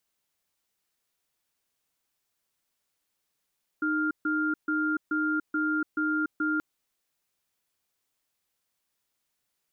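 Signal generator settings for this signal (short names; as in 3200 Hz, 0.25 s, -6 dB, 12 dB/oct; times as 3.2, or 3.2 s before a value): cadence 308 Hz, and 1400 Hz, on 0.29 s, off 0.14 s, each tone -27 dBFS 2.78 s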